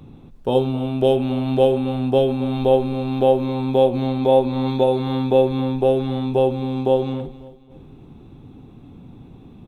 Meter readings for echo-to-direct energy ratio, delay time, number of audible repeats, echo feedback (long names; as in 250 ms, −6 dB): −16.5 dB, 271 ms, 3, 36%